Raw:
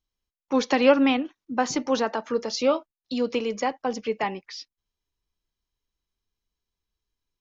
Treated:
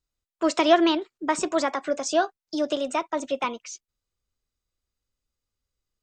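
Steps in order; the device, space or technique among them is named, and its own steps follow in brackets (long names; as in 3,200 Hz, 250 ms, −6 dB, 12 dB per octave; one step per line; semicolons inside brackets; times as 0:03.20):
nightcore (speed change +23%)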